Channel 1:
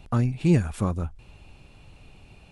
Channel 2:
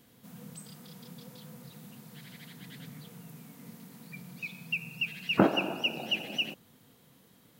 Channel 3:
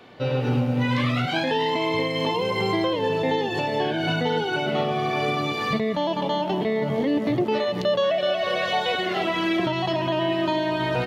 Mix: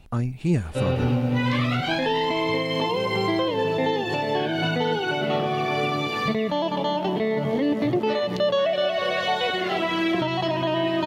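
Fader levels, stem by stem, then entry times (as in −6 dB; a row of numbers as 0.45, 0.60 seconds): −2.5, −14.0, 0.0 decibels; 0.00, 0.00, 0.55 seconds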